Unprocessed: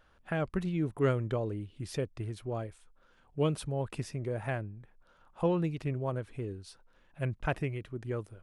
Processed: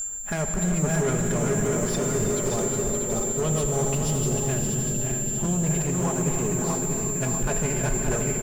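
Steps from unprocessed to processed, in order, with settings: regenerating reverse delay 0.32 s, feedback 68%, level -5 dB; spectral gain 3.95–5.64, 390–2600 Hz -9 dB; low shelf 120 Hz +10 dB; harmonic-percussive split percussive +5 dB; high shelf 6200 Hz -6 dB; comb 4.8 ms, depth 62%; whine 7300 Hz -33 dBFS; limiter -19 dBFS, peak gain reduction 10.5 dB; soft clip -28.5 dBFS, distortion -11 dB; echo 0.57 s -7 dB; non-linear reverb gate 0.42 s flat, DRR 3.5 dB; gain +6 dB

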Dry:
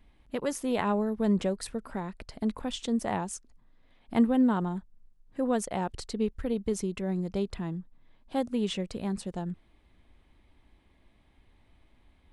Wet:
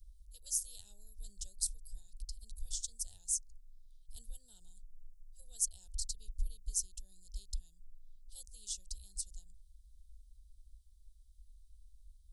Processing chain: inverse Chebyshev band-stop 130–2300 Hz, stop band 50 dB; gain +6.5 dB

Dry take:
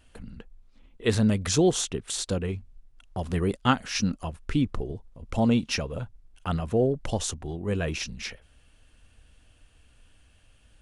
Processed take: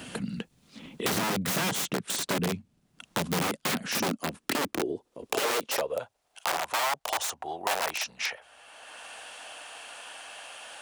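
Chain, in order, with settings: wrapped overs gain 23.5 dB; high-pass sweep 170 Hz -> 770 Hz, 3.72–6.52; three-band squash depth 70%

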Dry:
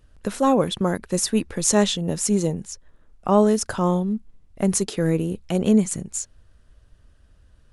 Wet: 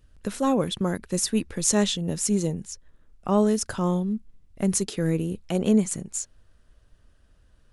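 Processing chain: bell 780 Hz -4.5 dB 1.9 oct, from 5.39 s 69 Hz; gain -2 dB

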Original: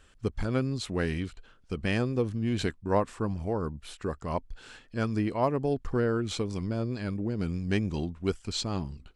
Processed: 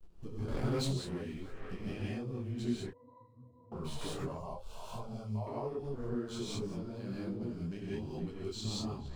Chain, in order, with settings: backlash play -46 dBFS; bell 1800 Hz -6.5 dB 0.99 oct; notches 50/100 Hz; narrowing echo 0.457 s, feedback 75%, band-pass 1300 Hz, level -20 dB; compressor 12:1, threshold -48 dBFS, peak gain reduction 27.5 dB; flange 0.28 Hz, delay 5.7 ms, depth 4.2 ms, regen +60%; non-linear reverb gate 0.22 s rising, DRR -6 dB; 0.48–0.91 sample leveller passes 3; 2.9–3.72 octave resonator B, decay 0.49 s; 4.37–5.47 fixed phaser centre 730 Hz, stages 4; detuned doubles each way 42 cents; gain +13.5 dB

